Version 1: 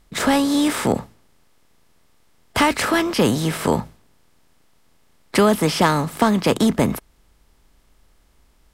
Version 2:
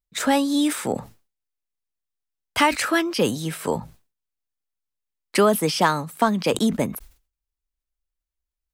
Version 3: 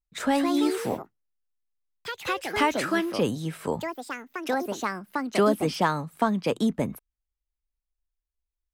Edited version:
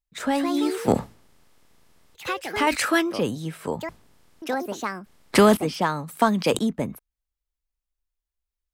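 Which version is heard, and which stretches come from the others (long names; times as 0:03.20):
3
0:00.88–0:02.15: punch in from 1
0:02.67–0:03.11: punch in from 2
0:03.89–0:04.42: punch in from 1
0:05.06–0:05.57: punch in from 1
0:06.08–0:06.60: punch in from 2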